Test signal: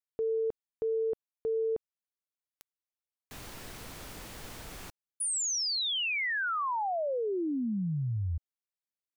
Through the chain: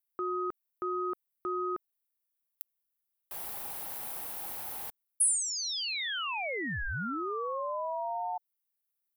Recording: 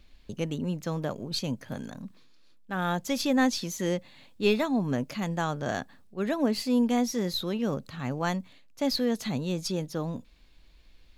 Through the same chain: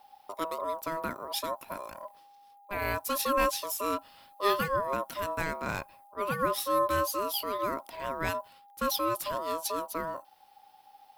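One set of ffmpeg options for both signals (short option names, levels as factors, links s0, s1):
-af "aeval=exprs='val(0)*sin(2*PI*810*n/s)':c=same,aexciter=amount=6.1:drive=4.4:freq=9400"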